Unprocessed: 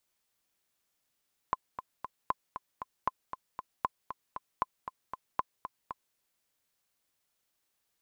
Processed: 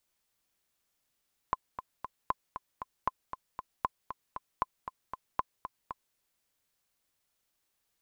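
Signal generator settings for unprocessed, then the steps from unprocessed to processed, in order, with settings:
metronome 233 bpm, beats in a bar 3, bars 6, 1.03 kHz, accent 10 dB -14.5 dBFS
bass shelf 77 Hz +6 dB

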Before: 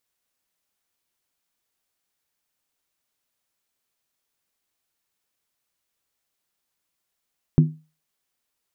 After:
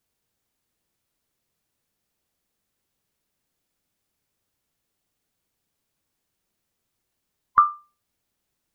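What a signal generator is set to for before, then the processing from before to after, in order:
skin hit, lowest mode 156 Hz, decay 0.31 s, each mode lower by 8 dB, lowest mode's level -8 dB
split-band scrambler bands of 1 kHz; bass shelf 440 Hz +11.5 dB

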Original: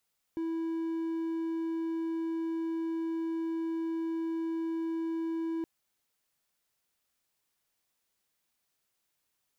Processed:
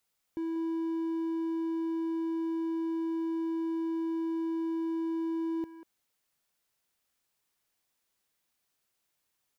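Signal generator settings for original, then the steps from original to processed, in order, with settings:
tone triangle 328 Hz -28.5 dBFS 5.27 s
speakerphone echo 190 ms, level -10 dB

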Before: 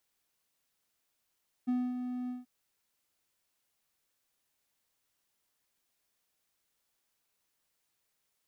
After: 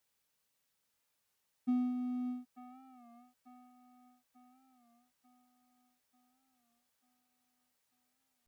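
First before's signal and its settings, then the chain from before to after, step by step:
ADSR triangle 249 Hz, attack 19 ms, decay 245 ms, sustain -7.5 dB, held 0.62 s, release 163 ms -24.5 dBFS
comb of notches 350 Hz; feedback echo behind a band-pass 891 ms, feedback 54%, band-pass 1.1 kHz, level -5 dB; warped record 33 1/3 rpm, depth 100 cents

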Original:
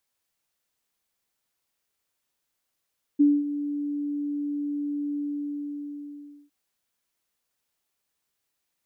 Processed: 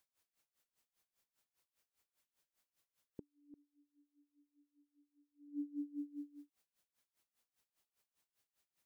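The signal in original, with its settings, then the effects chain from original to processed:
ADSR sine 290 Hz, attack 18 ms, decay 226 ms, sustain -13 dB, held 1.98 s, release 1330 ms -13.5 dBFS
compression 6:1, threshold -36 dBFS; inverted gate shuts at -34 dBFS, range -33 dB; logarithmic tremolo 5 Hz, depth 21 dB

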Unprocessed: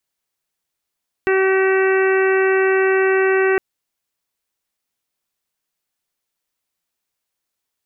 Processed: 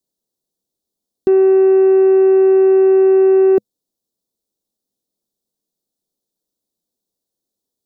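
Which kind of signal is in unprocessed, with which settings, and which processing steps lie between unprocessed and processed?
steady additive tone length 2.31 s, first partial 382 Hz, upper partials -12.5/-13.5/-9/-9/-17/-15.5 dB, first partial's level -14 dB
FFT filter 120 Hz 0 dB, 210 Hz +9 dB, 490 Hz +6 dB, 2.3 kHz -26 dB, 3.7 kHz -2 dB

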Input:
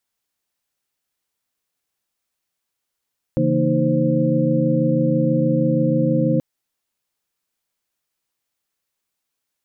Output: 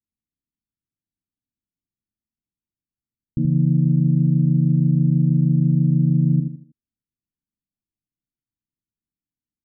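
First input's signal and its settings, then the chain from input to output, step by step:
chord C#3/E3/A#3/D#4/C5 sine, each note -21.5 dBFS 3.03 s
inverse Chebyshev low-pass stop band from 580 Hz, stop band 40 dB; feedback delay 79 ms, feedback 35%, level -6 dB

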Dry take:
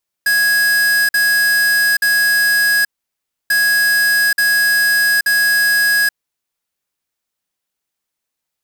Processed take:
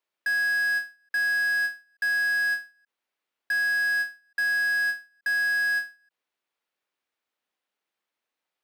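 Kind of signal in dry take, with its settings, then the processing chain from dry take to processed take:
beep pattern square 1.66 kHz, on 0.83 s, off 0.05 s, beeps 3, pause 0.65 s, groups 2, -13.5 dBFS
three-band isolator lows -17 dB, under 240 Hz, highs -14 dB, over 3.8 kHz; peak limiter -21 dBFS; endings held to a fixed fall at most 200 dB/s

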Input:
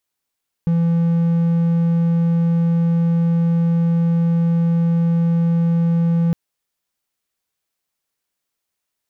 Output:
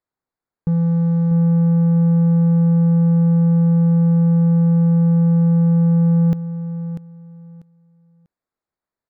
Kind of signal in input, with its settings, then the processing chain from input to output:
tone triangle 168 Hz -11.5 dBFS 5.66 s
local Wiener filter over 15 samples; feedback delay 643 ms, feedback 22%, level -11 dB

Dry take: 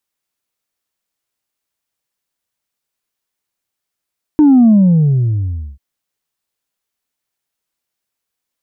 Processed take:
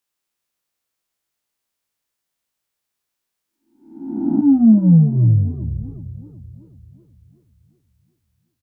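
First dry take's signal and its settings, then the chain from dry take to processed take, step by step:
sub drop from 310 Hz, over 1.39 s, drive 1 dB, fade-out 1.11 s, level -5 dB
spectral blur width 554 ms; doubling 18 ms -3 dB; modulated delay 382 ms, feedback 50%, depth 183 cents, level -15.5 dB

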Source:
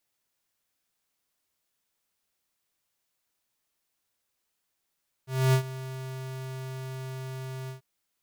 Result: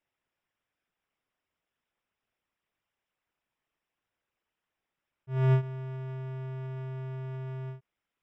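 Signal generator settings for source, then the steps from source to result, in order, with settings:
ADSR square 131 Hz, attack 263 ms, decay 90 ms, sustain -17 dB, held 2.42 s, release 119 ms -20 dBFS
resonances exaggerated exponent 1.5; Savitzky-Golay filter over 25 samples

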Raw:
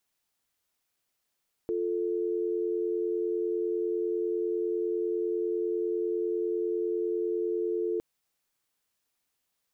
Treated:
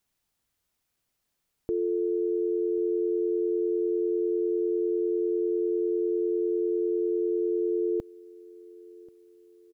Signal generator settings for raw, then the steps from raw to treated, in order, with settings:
call progress tone dial tone, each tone -29.5 dBFS 6.31 s
bass shelf 220 Hz +10.5 dB; feedback delay 1086 ms, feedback 43%, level -24 dB

